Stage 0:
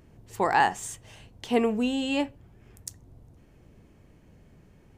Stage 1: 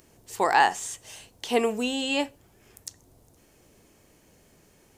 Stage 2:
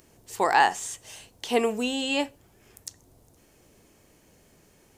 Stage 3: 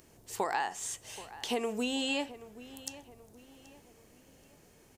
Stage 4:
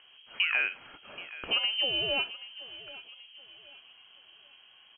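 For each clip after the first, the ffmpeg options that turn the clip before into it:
-filter_complex "[0:a]acrossover=split=4600[a][b];[b]acompressor=threshold=-52dB:ratio=4:attack=1:release=60[c];[a][c]amix=inputs=2:normalize=0,bass=f=250:g=-11,treble=f=4k:g=13,volume=2dB"
-af anull
-filter_complex "[0:a]acompressor=threshold=-26dB:ratio=12,asplit=2[a][b];[b]adelay=779,lowpass=f=3.2k:p=1,volume=-16dB,asplit=2[c][d];[d]adelay=779,lowpass=f=3.2k:p=1,volume=0.43,asplit=2[e][f];[f]adelay=779,lowpass=f=3.2k:p=1,volume=0.43,asplit=2[g][h];[h]adelay=779,lowpass=f=3.2k:p=1,volume=0.43[i];[a][c][e][g][i]amix=inputs=5:normalize=0,volume=-2dB"
-af "lowpass=f=2.8k:t=q:w=0.5098,lowpass=f=2.8k:t=q:w=0.6013,lowpass=f=2.8k:t=q:w=0.9,lowpass=f=2.8k:t=q:w=2.563,afreqshift=-3300,volume=4dB"

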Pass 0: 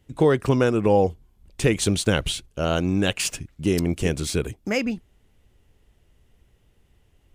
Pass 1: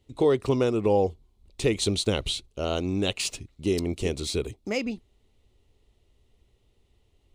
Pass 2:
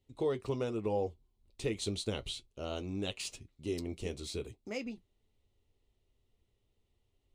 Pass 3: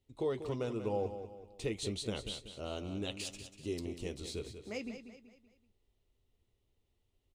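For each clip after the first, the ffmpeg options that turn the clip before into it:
-af "equalizer=f=160:t=o:w=0.33:g=-8,equalizer=f=400:t=o:w=0.33:g=4,equalizer=f=1.6k:t=o:w=0.33:g=-11,equalizer=f=4k:t=o:w=0.33:g=8,equalizer=f=12.5k:t=o:w=0.33:g=-8,volume=-4.5dB"
-af "flanger=delay=7.7:depth=1.9:regen=-57:speed=0.83:shape=sinusoidal,volume=-7dB"
-af "aecho=1:1:190|380|570|760:0.316|0.133|0.0558|0.0234,volume=-2dB"

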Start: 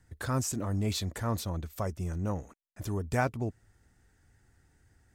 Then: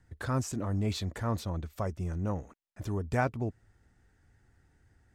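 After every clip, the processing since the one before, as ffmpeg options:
-af "lowpass=f=3.7k:p=1"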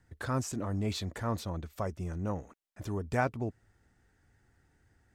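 -af "lowshelf=f=130:g=-5"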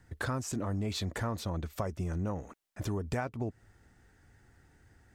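-af "acompressor=threshold=-36dB:ratio=12,volume=6dB"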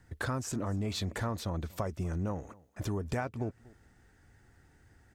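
-af "aecho=1:1:240:0.075"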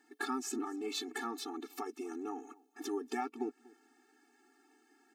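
-af "afftfilt=real='re*eq(mod(floor(b*sr/1024/230),2),1)':imag='im*eq(mod(floor(b*sr/1024/230),2),1)':win_size=1024:overlap=0.75,volume=2dB"

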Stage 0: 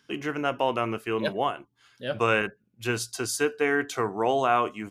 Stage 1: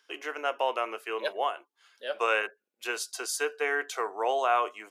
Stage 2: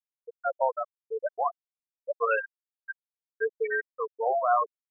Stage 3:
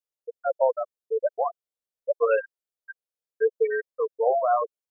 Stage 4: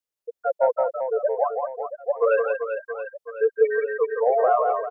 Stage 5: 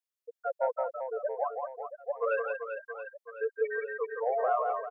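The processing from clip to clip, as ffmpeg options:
-af "highpass=f=450:w=0.5412,highpass=f=450:w=1.3066,volume=-2dB"
-af "afftfilt=real='re*gte(hypot(re,im),0.2)':imag='im*gte(hypot(re,im),0.2)':win_size=1024:overlap=0.75,volume=3dB"
-af "equalizer=f=250:t=o:w=1:g=-6,equalizer=f=500:t=o:w=1:g=10,equalizer=f=1k:t=o:w=1:g=-4,equalizer=f=2k:t=o:w=1:g=-4"
-af "acontrast=32,aecho=1:1:170|391|678.3|1052|1537:0.631|0.398|0.251|0.158|0.1,volume=-3.5dB"
-af "highpass=f=870:p=1,volume=-4.5dB"

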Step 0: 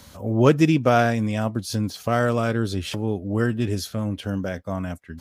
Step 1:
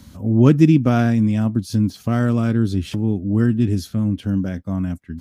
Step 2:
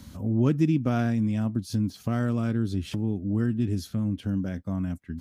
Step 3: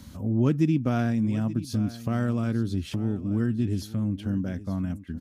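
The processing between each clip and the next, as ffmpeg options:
-af "lowshelf=f=370:t=q:w=1.5:g=9,volume=-3.5dB"
-af "acompressor=threshold=-31dB:ratio=1.5,volume=-2dB"
-af "aecho=1:1:879:0.158"

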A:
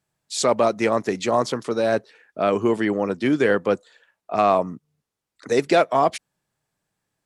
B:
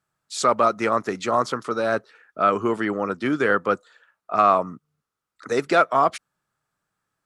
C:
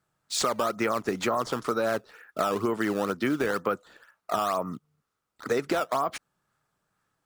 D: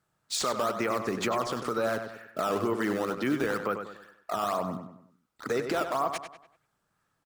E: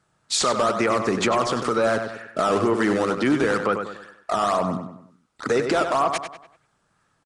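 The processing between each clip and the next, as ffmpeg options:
-af "equalizer=f=1.3k:t=o:w=0.5:g=13.5,volume=-3.5dB"
-filter_complex "[0:a]asplit=2[a][b];[b]acrusher=samples=12:mix=1:aa=0.000001:lfo=1:lforange=19.2:lforate=2.1,volume=-6dB[c];[a][c]amix=inputs=2:normalize=0,alimiter=limit=-9dB:level=0:latency=1:release=23,acompressor=threshold=-23dB:ratio=6"
-filter_complex "[0:a]alimiter=limit=-19dB:level=0:latency=1:release=59,asplit=2[a][b];[b]adelay=97,lowpass=f=4.1k:p=1,volume=-7.5dB,asplit=2[c][d];[d]adelay=97,lowpass=f=4.1k:p=1,volume=0.42,asplit=2[e][f];[f]adelay=97,lowpass=f=4.1k:p=1,volume=0.42,asplit=2[g][h];[h]adelay=97,lowpass=f=4.1k:p=1,volume=0.42,asplit=2[i][j];[j]adelay=97,lowpass=f=4.1k:p=1,volume=0.42[k];[c][e][g][i][k]amix=inputs=5:normalize=0[l];[a][l]amix=inputs=2:normalize=0"
-af "asoftclip=type=tanh:threshold=-20dB,aresample=22050,aresample=44100,volume=9dB"

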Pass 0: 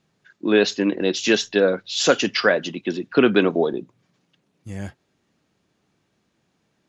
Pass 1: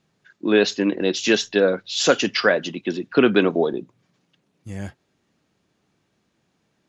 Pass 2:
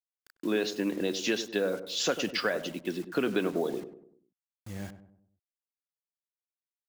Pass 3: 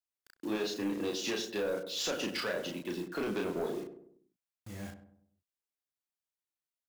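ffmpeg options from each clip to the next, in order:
-af anull
-filter_complex "[0:a]acompressor=threshold=-18dB:ratio=3,acrusher=bits=6:mix=0:aa=0.000001,asplit=2[a][b];[b]adelay=98,lowpass=f=1k:p=1,volume=-10dB,asplit=2[c][d];[d]adelay=98,lowpass=f=1k:p=1,volume=0.47,asplit=2[e][f];[f]adelay=98,lowpass=f=1k:p=1,volume=0.47,asplit=2[g][h];[h]adelay=98,lowpass=f=1k:p=1,volume=0.47,asplit=2[i][j];[j]adelay=98,lowpass=f=1k:p=1,volume=0.47[k];[c][e][g][i][k]amix=inputs=5:normalize=0[l];[a][l]amix=inputs=2:normalize=0,volume=-7.5dB"
-filter_complex "[0:a]asoftclip=type=tanh:threshold=-27dB,asplit=2[a][b];[b]adelay=34,volume=-3dB[c];[a][c]amix=inputs=2:normalize=0,volume=-3dB"

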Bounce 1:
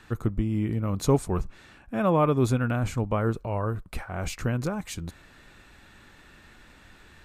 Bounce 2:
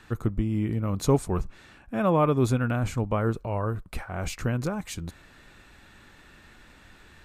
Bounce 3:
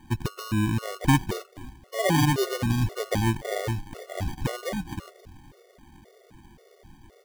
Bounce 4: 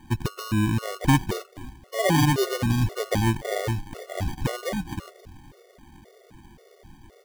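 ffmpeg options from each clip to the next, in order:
-af anull
-filter_complex "[0:a]asplit=4[a][b][c][d];[b]adelay=264,afreqshift=-82,volume=-17dB[e];[c]adelay=528,afreqshift=-164,volume=-26.6dB[f];[d]adelay=792,afreqshift=-246,volume=-36.3dB[g];[a][e][f][g]amix=inputs=4:normalize=0,acrusher=samples=33:mix=1:aa=0.000001,afftfilt=real='re*gt(sin(2*PI*1.9*pts/sr)*(1-2*mod(floor(b*sr/1024/370),2)),0)':imag='im*gt(sin(2*PI*1.9*pts/sr)*(1-2*mod(floor(b*sr/1024/370),2)),0)':win_size=1024:overlap=0.75,volume=3dB"
-af "asoftclip=type=tanh:threshold=-8.5dB,volume=2dB"

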